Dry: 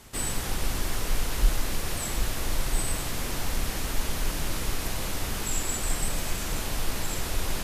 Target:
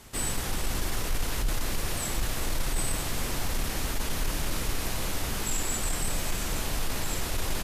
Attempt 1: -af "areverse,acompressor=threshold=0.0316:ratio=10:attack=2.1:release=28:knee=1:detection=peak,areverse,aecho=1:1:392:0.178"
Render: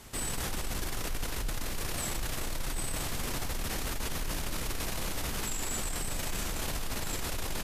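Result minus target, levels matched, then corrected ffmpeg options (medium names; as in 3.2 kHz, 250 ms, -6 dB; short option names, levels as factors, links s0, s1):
compression: peak gain reduction +7 dB
-af "areverse,acompressor=threshold=0.075:ratio=10:attack=2.1:release=28:knee=1:detection=peak,areverse,aecho=1:1:392:0.178"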